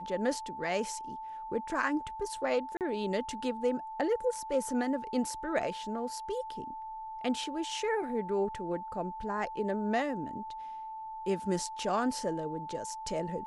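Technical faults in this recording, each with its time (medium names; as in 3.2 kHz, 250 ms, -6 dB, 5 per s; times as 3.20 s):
whine 880 Hz -39 dBFS
2.77–2.81 s: dropout 38 ms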